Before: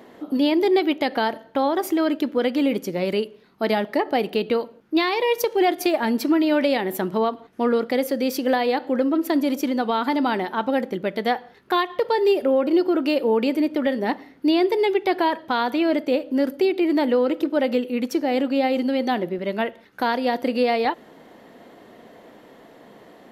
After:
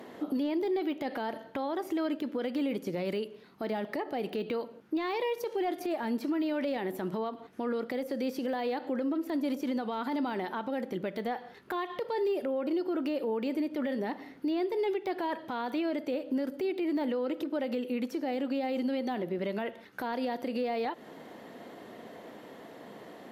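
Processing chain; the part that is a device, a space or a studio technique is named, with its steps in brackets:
podcast mastering chain (high-pass filter 78 Hz; de-essing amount 95%; downward compressor 4 to 1, threshold −27 dBFS, peak gain reduction 10.5 dB; brickwall limiter −23.5 dBFS, peak gain reduction 9 dB; MP3 96 kbit/s 48,000 Hz)

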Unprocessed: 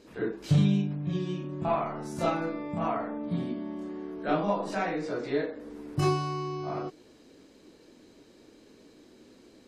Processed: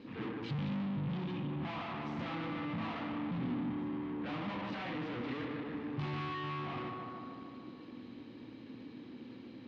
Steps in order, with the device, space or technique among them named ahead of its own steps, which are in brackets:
analogue delay pedal into a guitar amplifier (bucket-brigade delay 152 ms, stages 4,096, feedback 64%, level −10 dB; tube saturation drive 43 dB, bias 0.5; loudspeaker in its box 92–3,500 Hz, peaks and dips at 120 Hz +9 dB, 250 Hz +7 dB, 410 Hz −8 dB, 640 Hz −10 dB, 1,500 Hz −5 dB)
level +6.5 dB

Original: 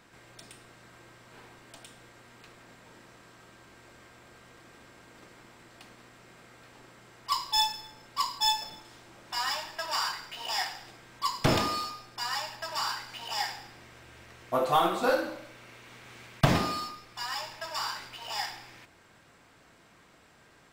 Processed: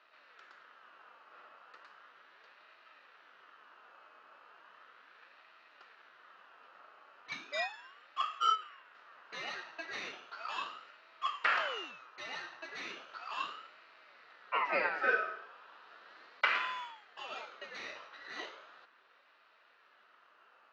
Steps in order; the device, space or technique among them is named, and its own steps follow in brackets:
0:08.55–0:08.95: parametric band 4,100 Hz −12 dB 1.4 octaves
voice changer toy (ring modulator whose carrier an LFO sweeps 1,600 Hz, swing 40%, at 0.36 Hz; loudspeaker in its box 600–3,500 Hz, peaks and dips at 800 Hz −4 dB, 1,300 Hz +6 dB, 2,200 Hz −9 dB, 3,400 Hz −9 dB)

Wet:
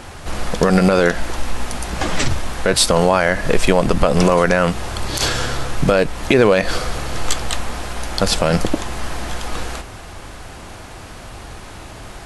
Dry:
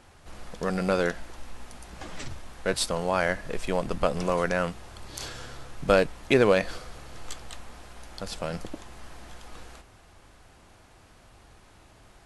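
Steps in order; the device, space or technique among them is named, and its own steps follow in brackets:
loud club master (downward compressor 2 to 1, threshold −29 dBFS, peak gain reduction 8.5 dB; hard clipping −12.5 dBFS, distortion −40 dB; boost into a limiter +20.5 dB)
level −1 dB

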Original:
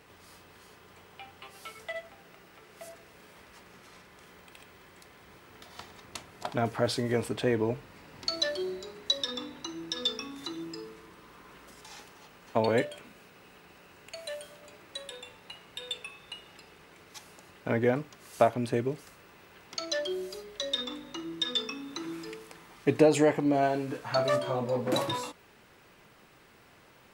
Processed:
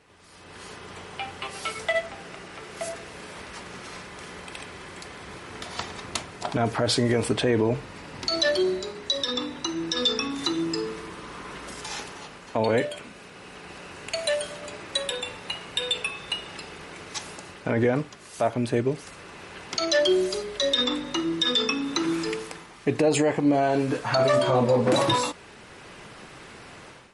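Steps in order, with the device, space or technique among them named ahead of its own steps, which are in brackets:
low-bitrate web radio (automatic gain control gain up to 15.5 dB; brickwall limiter −10.5 dBFS, peak gain reduction 9.5 dB; level −1.5 dB; MP3 48 kbit/s 48,000 Hz)

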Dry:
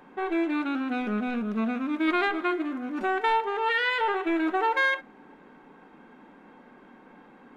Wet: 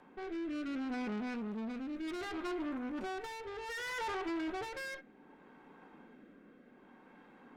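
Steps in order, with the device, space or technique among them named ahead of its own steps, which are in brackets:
overdriven rotary cabinet (tube saturation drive 32 dB, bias 0.5; rotating-speaker cabinet horn 0.65 Hz)
level −2.5 dB

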